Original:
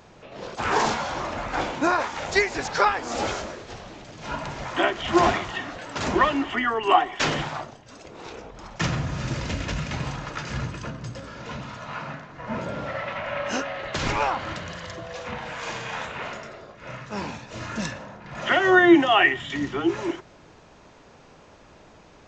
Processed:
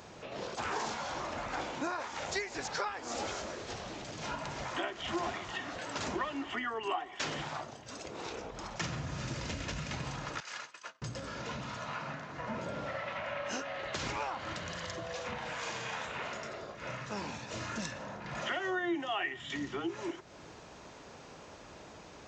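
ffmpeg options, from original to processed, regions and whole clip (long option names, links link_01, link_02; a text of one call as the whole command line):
ffmpeg -i in.wav -filter_complex "[0:a]asettb=1/sr,asplit=3[link_01][link_02][link_03];[link_01]atrim=end=10.404[link_04];[link_02]atrim=start=10.4:end=11.02,asetpts=PTS-STARTPTS,afade=type=in:duration=0.004:curve=qsin,afade=type=out:start_time=0.616:duration=0.004:curve=qsin,highpass=900,agate=range=-33dB:threshold=-34dB:ratio=3:release=100:detection=peak[link_05];[link_03]atrim=start=11.016[link_06];[link_04][link_05]acrossfade=duration=0.004:curve1=hsin:curve2=qsin[link_07];[link_07][link_06]acrossfade=duration=0.004:curve1=qsin:curve2=hsin,highpass=43,bass=frequency=250:gain=-2,treble=frequency=4000:gain=4,acompressor=threshold=-38dB:ratio=3" out.wav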